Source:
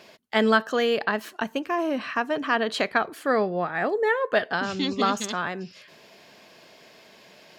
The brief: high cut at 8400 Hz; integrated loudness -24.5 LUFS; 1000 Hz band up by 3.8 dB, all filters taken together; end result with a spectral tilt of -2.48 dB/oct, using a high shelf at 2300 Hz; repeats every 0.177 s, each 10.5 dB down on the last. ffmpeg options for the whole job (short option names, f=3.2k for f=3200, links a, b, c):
-af "lowpass=8.4k,equalizer=f=1k:t=o:g=6,highshelf=f=2.3k:g=-4.5,aecho=1:1:177|354|531:0.299|0.0896|0.0269,volume=-1dB"